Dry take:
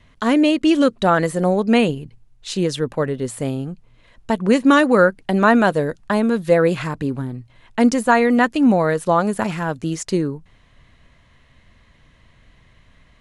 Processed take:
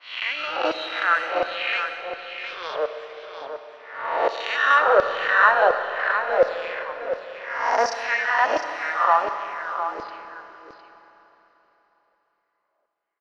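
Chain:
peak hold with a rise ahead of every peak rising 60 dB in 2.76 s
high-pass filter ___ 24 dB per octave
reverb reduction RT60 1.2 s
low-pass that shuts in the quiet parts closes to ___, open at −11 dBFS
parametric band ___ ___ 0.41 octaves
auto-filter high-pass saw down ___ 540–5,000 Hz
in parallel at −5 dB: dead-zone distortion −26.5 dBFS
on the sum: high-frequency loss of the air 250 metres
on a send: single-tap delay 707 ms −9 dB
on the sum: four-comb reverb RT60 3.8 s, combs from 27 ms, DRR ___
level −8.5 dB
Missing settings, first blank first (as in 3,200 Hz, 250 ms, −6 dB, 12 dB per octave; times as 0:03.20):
330 Hz, 610 Hz, 5,600 Hz, +10.5 dB, 1.4 Hz, 7.5 dB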